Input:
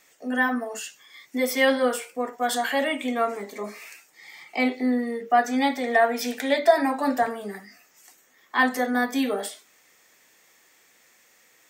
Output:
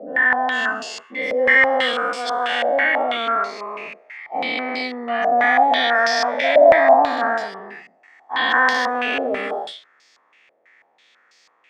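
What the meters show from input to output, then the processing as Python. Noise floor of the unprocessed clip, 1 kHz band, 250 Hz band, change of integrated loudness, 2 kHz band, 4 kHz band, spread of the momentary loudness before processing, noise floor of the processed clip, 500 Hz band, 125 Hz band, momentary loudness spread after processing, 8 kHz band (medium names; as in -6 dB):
-60 dBFS, +7.5 dB, -4.5 dB, +6.5 dB, +9.5 dB, +8.0 dB, 15 LU, -60 dBFS, +6.5 dB, no reading, 16 LU, -3.0 dB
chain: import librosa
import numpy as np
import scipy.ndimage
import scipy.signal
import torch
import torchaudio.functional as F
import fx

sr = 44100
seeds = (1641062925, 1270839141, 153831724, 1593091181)

y = fx.spec_dilate(x, sr, span_ms=480)
y = fx.highpass(y, sr, hz=450.0, slope=6)
y = fx.filter_held_lowpass(y, sr, hz=6.1, low_hz=600.0, high_hz=4800.0)
y = y * librosa.db_to_amplitude(-5.5)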